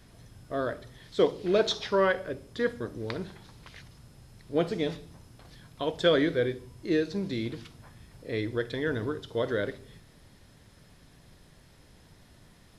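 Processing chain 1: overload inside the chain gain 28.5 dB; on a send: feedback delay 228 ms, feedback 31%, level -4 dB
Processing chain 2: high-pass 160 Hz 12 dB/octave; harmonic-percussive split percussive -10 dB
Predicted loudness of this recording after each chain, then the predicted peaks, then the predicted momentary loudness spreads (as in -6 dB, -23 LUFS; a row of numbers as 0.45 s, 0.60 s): -33.5 LUFS, -32.5 LUFS; -23.0 dBFS, -12.5 dBFS; 18 LU, 15 LU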